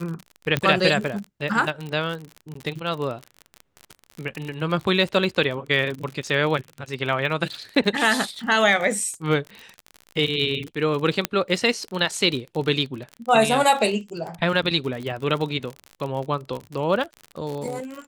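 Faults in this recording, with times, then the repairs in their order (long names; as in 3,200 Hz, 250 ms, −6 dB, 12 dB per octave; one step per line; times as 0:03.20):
surface crackle 44 per second −28 dBFS
0:00.57: click −8 dBFS
0:02.54–0:02.55: drop-out 14 ms
0:11.25: click −4 dBFS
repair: click removal
repair the gap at 0:02.54, 14 ms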